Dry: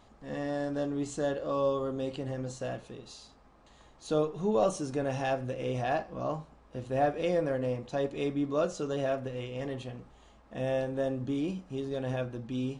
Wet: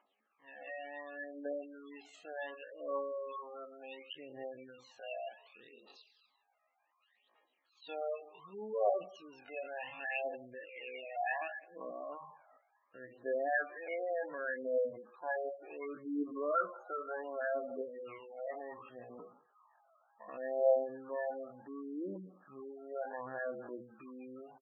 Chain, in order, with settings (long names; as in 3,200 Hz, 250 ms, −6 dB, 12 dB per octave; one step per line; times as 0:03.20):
high-pass filter 410 Hz 12 dB per octave
spectral tilt −4.5 dB per octave
noise gate −53 dBFS, range −9 dB
phase shifter 1.3 Hz, delay 1.6 ms, feedback 65%
band-pass filter sweep 2,600 Hz → 1,300 Hz, 0:05.04–0:08.57
tempo change 0.52×
single-tap delay 183 ms −24 dB
gate on every frequency bin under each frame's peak −15 dB strong
dynamic equaliser 1,200 Hz, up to −5 dB, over −58 dBFS, Q 3.4
level +6.5 dB